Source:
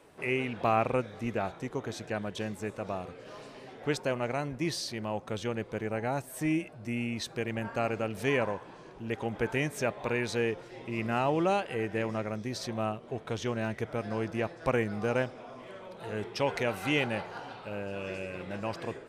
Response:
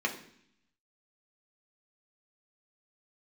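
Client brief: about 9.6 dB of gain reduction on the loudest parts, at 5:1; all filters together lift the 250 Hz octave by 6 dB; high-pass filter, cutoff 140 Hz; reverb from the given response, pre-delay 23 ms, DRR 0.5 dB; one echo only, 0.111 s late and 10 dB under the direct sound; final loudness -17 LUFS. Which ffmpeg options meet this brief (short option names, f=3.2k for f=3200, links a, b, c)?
-filter_complex "[0:a]highpass=140,equalizer=f=250:t=o:g=8,acompressor=threshold=-31dB:ratio=5,aecho=1:1:111:0.316,asplit=2[a][b];[1:a]atrim=start_sample=2205,adelay=23[c];[b][c]afir=irnorm=-1:irlink=0,volume=-8.5dB[d];[a][d]amix=inputs=2:normalize=0,volume=16.5dB"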